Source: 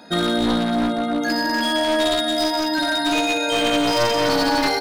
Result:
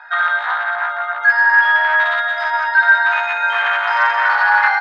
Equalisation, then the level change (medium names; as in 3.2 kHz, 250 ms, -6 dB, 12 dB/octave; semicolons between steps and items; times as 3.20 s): elliptic high-pass 810 Hz, stop band 80 dB; resonant low-pass 1.6 kHz, resonance Q 3.9; +4.5 dB